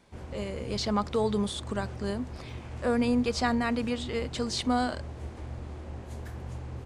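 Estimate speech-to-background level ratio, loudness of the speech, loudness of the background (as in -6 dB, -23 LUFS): 11.0 dB, -30.0 LUFS, -41.0 LUFS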